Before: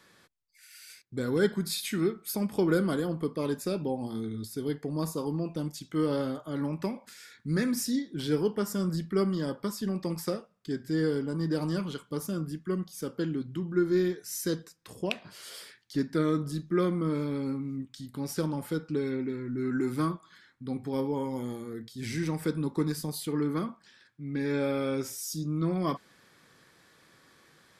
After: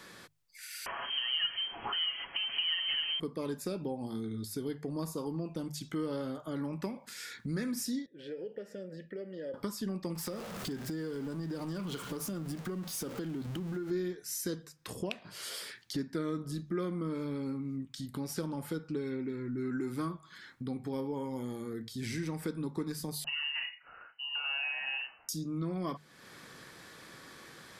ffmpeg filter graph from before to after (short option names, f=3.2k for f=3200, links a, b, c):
-filter_complex "[0:a]asettb=1/sr,asplit=3[a][b][c];[a]atrim=end=0.864[d];[b]atrim=start=0.86:end=3.2,asetpts=PTS-STARTPTS,afade=t=in:d=0.004:c=qsin,afade=t=out:st=2.336:d=0.004:c=qsin,aeval=exprs='val(0)+0.5*0.0299*sgn(val(0))':c=same,aecho=1:1:6.9:0.55,atrim=end_sample=103194,lowpass=f=2.8k:t=q:w=0.5098,lowpass=f=2.8k:t=q:w=0.6013,lowpass=f=2.8k:t=q:w=0.9,lowpass=f=2.8k:t=q:w=2.563,afreqshift=-3300[e];[c]atrim=start=3.196[f];[d][e]acrossfade=d=0.004:c1=hsin:c2=qsin[g];[g][f]acrossfade=d=0.004:c1=qsin:c2=hsin,asettb=1/sr,asplit=3[h][i][j];[h]atrim=end=8.064[k];[i]atrim=start=8.06:end=9.54,asetpts=PTS-STARTPTS,afade=t=in:d=0.004:c=qsin,afade=t=out:st=1.476:d=0.004:c=qsin,lowshelf=f=160:g=7.5,acompressor=threshold=-25dB:ratio=6:attack=3.2:release=140:knee=1:detection=peak,asplit=3[l][m][n];[l]bandpass=f=530:t=q:w=8,volume=0dB[o];[m]bandpass=f=1.84k:t=q:w=8,volume=-6dB[p];[n]bandpass=f=2.48k:t=q:w=8,volume=-9dB[q];[o][p][q]amix=inputs=3:normalize=0[r];[j]atrim=start=9.536[s];[k][r]acrossfade=d=0.004:c1=hsin:c2=qsin[t];[t][s]acrossfade=d=0.004:c1=qsin:c2=hsin,asettb=1/sr,asplit=3[u][v][w];[u]atrim=end=10.154[x];[v]atrim=start=10.15:end=13.91,asetpts=PTS-STARTPTS,afade=t=in:d=0.004:c=qsin,afade=t=out:st=3.756:d=0.004:c=qsin,aeval=exprs='val(0)+0.5*0.01*sgn(val(0))':c=same,acompressor=threshold=-33dB:ratio=4:attack=3.2:release=140:knee=1:detection=peak[y];[w]atrim=start=13.906[z];[x][y]acrossfade=d=0.004:c1=hsin:c2=qsin[aa];[aa][z]acrossfade=d=0.004:c1=qsin:c2=hsin,asettb=1/sr,asplit=3[ab][ac][ad];[ab]atrim=end=23.244[ae];[ac]atrim=start=23.24:end=25.29,asetpts=PTS-STARTPTS,afade=t=in:d=0.004:c=qsin,afade=t=out:st=2.046:d=0.004:c=qsin,highpass=f=320:p=1,lowpass=f=2.6k:t=q:w=0.5098,lowpass=f=2.6k:t=q:w=0.6013,lowpass=f=2.6k:t=q:w=0.9,lowpass=f=2.6k:t=q:w=2.563,afreqshift=-3100,asplit=2[af][ag];[ag]adelay=37,volume=-6dB[ah];[af][ah]amix=inputs=2:normalize=0,atrim=end_sample=90405[ai];[ad]atrim=start=25.286[aj];[ae][ai]acrossfade=d=0.004:c1=hsin:c2=qsin[ak];[ak][aj]acrossfade=d=0.004:c1=qsin:c2=hsin,bandreject=f=50:t=h:w=6,bandreject=f=100:t=h:w=6,bandreject=f=150:t=h:w=6,acompressor=threshold=-49dB:ratio=2.5,volume=8.5dB"